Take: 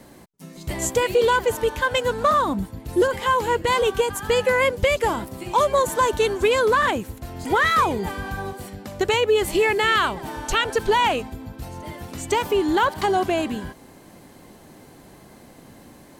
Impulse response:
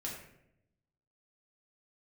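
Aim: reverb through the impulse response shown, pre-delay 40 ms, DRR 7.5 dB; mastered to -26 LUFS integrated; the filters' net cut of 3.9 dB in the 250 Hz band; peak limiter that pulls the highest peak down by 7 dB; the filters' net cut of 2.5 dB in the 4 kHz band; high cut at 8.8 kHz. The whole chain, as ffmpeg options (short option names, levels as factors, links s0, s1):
-filter_complex "[0:a]lowpass=8800,equalizer=f=250:t=o:g=-6,equalizer=f=4000:t=o:g=-3.5,alimiter=limit=0.158:level=0:latency=1,asplit=2[s0][s1];[1:a]atrim=start_sample=2205,adelay=40[s2];[s1][s2]afir=irnorm=-1:irlink=0,volume=0.398[s3];[s0][s3]amix=inputs=2:normalize=0,volume=0.891"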